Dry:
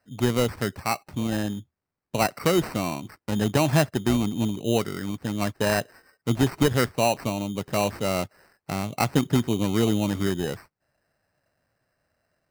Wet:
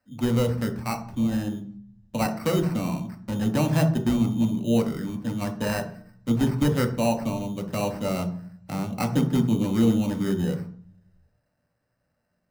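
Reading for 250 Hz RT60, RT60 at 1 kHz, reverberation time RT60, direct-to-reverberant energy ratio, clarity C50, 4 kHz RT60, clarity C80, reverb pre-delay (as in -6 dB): 0.95 s, 0.45 s, 0.50 s, 3.0 dB, 10.0 dB, 0.45 s, 15.0 dB, 3 ms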